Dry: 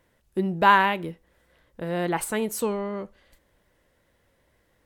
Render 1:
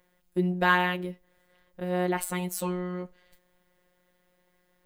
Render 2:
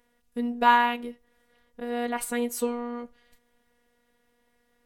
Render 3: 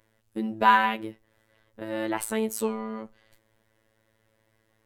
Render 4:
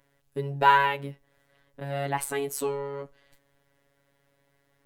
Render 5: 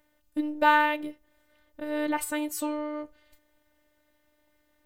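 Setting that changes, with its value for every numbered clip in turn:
phases set to zero, frequency: 180, 240, 110, 140, 300 Hertz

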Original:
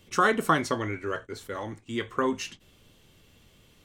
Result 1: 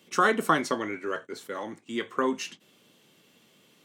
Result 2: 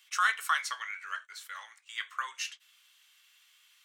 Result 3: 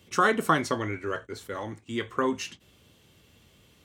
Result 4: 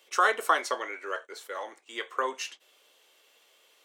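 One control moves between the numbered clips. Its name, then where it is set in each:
high-pass filter, corner frequency: 170, 1,300, 50, 480 Hertz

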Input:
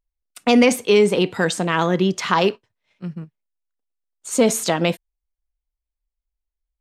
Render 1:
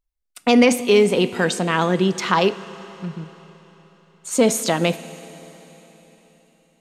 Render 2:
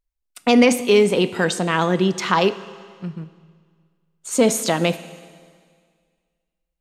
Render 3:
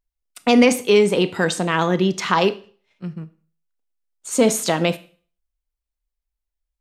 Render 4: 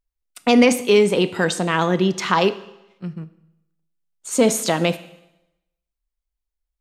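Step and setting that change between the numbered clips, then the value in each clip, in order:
four-comb reverb, RT60: 4.1, 1.9, 0.43, 0.89 seconds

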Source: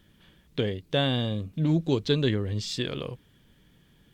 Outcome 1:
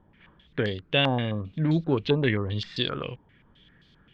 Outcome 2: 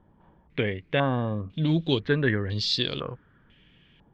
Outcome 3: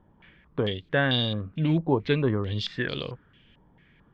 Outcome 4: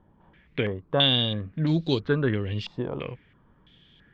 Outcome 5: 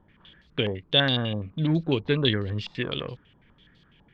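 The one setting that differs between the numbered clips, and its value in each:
low-pass on a step sequencer, speed: 7.6, 2, 4.5, 3, 12 Hertz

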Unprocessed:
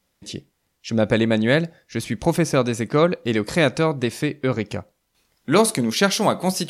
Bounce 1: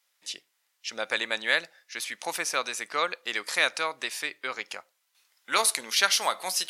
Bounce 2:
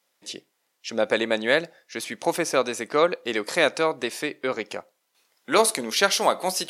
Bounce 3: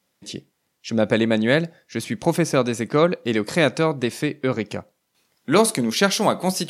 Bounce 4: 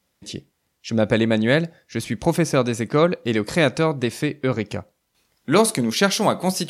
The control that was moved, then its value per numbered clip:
high-pass filter, corner frequency: 1,200, 460, 130, 45 Hertz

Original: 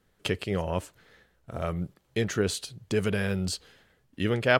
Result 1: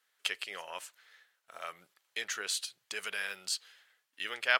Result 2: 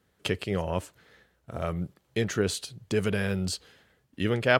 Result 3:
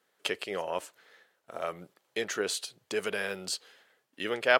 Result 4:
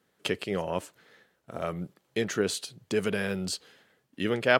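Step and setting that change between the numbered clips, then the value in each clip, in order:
high-pass filter, corner frequency: 1,400, 50, 480, 180 Hertz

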